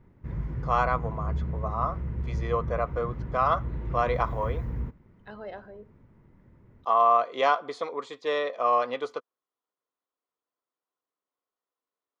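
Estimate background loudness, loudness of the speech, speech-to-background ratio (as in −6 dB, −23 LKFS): −34.0 LKFS, −27.5 LKFS, 6.5 dB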